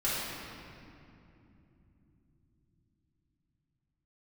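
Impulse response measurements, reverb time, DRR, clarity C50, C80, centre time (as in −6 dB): 3.0 s, −10.5 dB, −3.5 dB, −1.0 dB, 157 ms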